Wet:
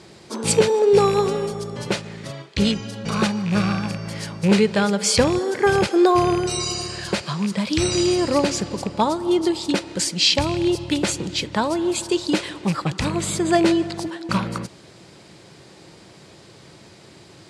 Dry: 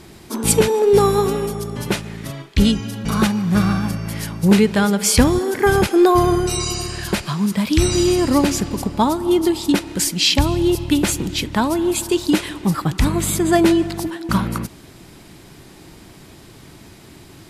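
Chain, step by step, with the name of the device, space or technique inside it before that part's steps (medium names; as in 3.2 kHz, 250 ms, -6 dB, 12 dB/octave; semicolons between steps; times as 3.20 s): car door speaker with a rattle (rattle on loud lows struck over -17 dBFS, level -19 dBFS; cabinet simulation 110–8800 Hz, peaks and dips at 260 Hz -7 dB, 530 Hz +7 dB, 4.5 kHz +4 dB); trim -2.5 dB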